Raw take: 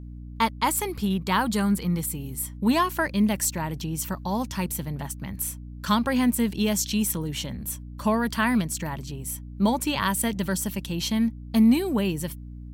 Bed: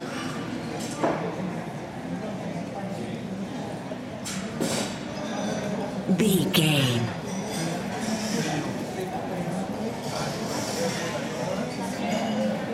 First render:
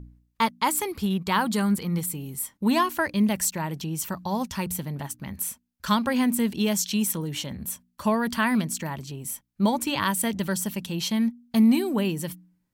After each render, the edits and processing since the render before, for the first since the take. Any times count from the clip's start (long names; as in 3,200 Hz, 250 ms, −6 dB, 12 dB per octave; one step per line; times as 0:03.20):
hum removal 60 Hz, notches 5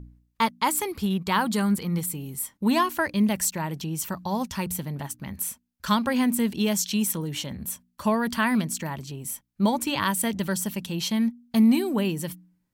no processing that can be heard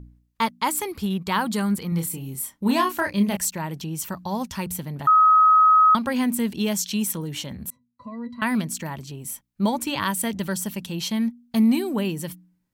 0:01.89–0:03.37: double-tracking delay 30 ms −5.5 dB
0:05.07–0:05.95: beep over 1,270 Hz −11.5 dBFS
0:07.70–0:08.42: resonances in every octave B, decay 0.1 s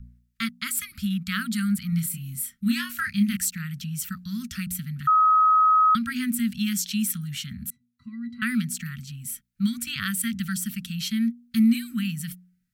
Chebyshev band-stop filter 240–1,300 Hz, order 5
dynamic equaliser 6,300 Hz, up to −3 dB, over −49 dBFS, Q 3.9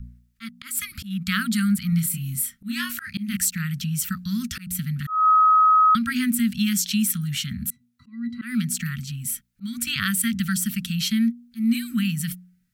in parallel at 0 dB: downward compressor 6 to 1, threshold −28 dBFS, peak gain reduction 12 dB
on the sum: volume swells 213 ms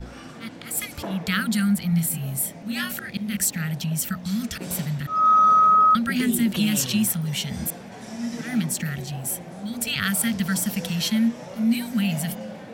mix in bed −9.5 dB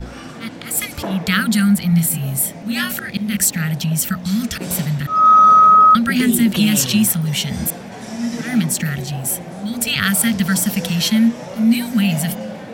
level +7 dB